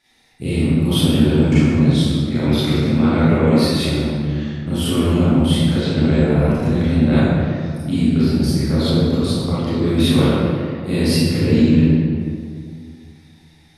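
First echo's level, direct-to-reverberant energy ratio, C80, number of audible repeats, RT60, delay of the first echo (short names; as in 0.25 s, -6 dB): none, -12.0 dB, -2.5 dB, none, 2.2 s, none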